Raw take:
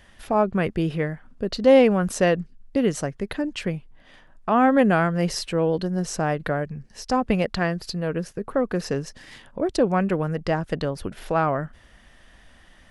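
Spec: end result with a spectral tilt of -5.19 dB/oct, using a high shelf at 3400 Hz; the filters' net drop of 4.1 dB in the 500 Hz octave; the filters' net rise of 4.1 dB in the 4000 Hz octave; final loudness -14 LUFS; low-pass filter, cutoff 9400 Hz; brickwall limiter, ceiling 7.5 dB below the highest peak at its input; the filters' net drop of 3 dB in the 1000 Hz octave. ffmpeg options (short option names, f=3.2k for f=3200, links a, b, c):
-af "lowpass=9.4k,equalizer=f=500:t=o:g=-4,equalizer=f=1k:t=o:g=-3,highshelf=f=3.4k:g=3,equalizer=f=4k:t=o:g=3.5,volume=13dB,alimiter=limit=-1.5dB:level=0:latency=1"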